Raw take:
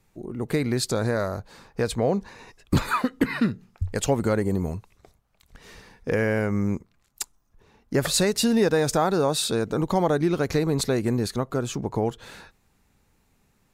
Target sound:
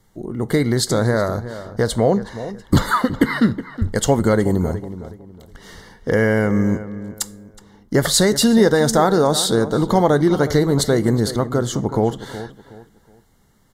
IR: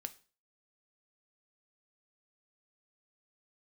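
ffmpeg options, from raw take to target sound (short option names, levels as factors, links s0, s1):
-filter_complex "[0:a]asuperstop=centerf=2500:order=12:qfactor=4.5,asplit=2[s0][s1];[s1]adelay=369,lowpass=f=2000:p=1,volume=0.224,asplit=2[s2][s3];[s3]adelay=369,lowpass=f=2000:p=1,volume=0.31,asplit=2[s4][s5];[s5]adelay=369,lowpass=f=2000:p=1,volume=0.31[s6];[s0][s2][s4][s6]amix=inputs=4:normalize=0,asplit=2[s7][s8];[1:a]atrim=start_sample=2205[s9];[s8][s9]afir=irnorm=-1:irlink=0,volume=1.68[s10];[s7][s10]amix=inputs=2:normalize=0"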